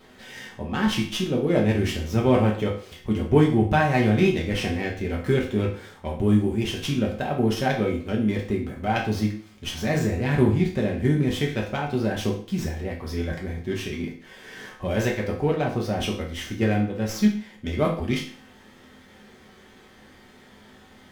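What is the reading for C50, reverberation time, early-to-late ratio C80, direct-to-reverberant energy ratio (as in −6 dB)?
7.5 dB, 0.45 s, 11.5 dB, −2.5 dB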